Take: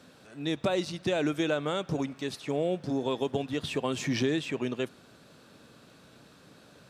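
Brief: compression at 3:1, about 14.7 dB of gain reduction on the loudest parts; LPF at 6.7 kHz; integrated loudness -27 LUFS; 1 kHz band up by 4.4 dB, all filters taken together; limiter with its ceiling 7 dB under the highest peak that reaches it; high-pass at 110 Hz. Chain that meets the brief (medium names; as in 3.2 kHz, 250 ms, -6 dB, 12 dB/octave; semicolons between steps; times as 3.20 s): high-pass 110 Hz; low-pass 6.7 kHz; peaking EQ 1 kHz +6 dB; compression 3:1, threshold -44 dBFS; trim +20 dB; peak limiter -15.5 dBFS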